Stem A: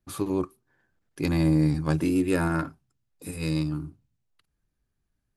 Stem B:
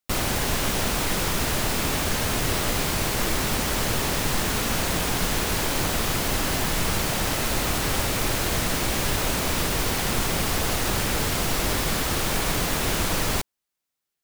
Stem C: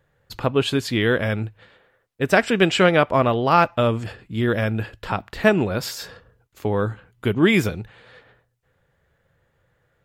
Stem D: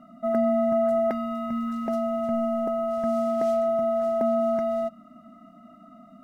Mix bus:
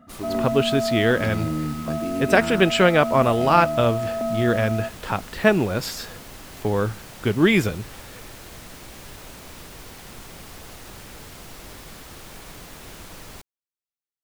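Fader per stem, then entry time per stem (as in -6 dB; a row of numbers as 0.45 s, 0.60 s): -6.0 dB, -16.5 dB, -0.5 dB, -2.5 dB; 0.00 s, 0.00 s, 0.00 s, 0.00 s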